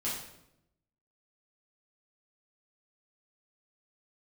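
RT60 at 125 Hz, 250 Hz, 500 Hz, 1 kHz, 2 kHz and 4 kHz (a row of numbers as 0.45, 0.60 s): 1.1, 1.1, 0.90, 0.75, 0.70, 0.65 s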